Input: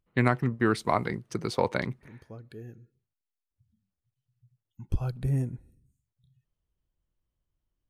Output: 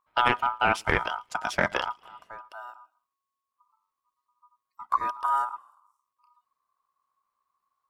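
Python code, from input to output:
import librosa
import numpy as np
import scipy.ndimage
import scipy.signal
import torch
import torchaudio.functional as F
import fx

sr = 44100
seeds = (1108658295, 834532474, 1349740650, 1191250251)

y = fx.echo_wet_highpass(x, sr, ms=113, feedback_pct=36, hz=2100.0, wet_db=-21)
y = y * np.sin(2.0 * np.pi * 1100.0 * np.arange(len(y)) / sr)
y = fx.doppler_dist(y, sr, depth_ms=0.19)
y = y * librosa.db_to_amplitude(4.0)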